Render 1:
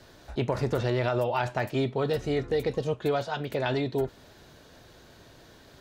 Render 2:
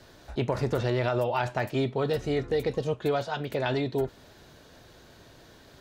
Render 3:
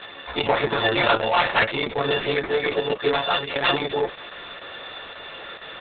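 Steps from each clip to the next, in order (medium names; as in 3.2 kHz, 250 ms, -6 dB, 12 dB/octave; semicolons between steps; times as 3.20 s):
no audible change
partials quantised in pitch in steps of 4 st; overdrive pedal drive 18 dB, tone 7.9 kHz, clips at -12.5 dBFS; trim +2.5 dB; Opus 6 kbps 48 kHz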